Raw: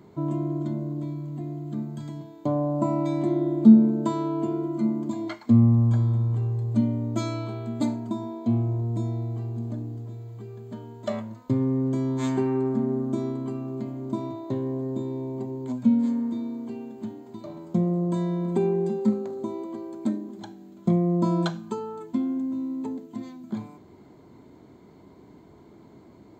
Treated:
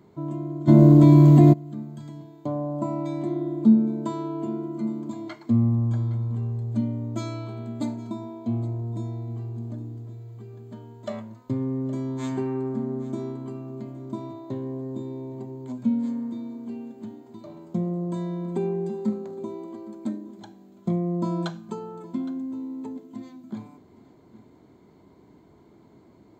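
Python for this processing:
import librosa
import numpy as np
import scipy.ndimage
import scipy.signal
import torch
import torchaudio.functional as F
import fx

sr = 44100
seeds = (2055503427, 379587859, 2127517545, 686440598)

p1 = x + fx.echo_single(x, sr, ms=815, db=-18.5, dry=0)
p2 = fx.env_flatten(p1, sr, amount_pct=100, at=(0.67, 1.52), fade=0.02)
y = F.gain(torch.from_numpy(p2), -3.5).numpy()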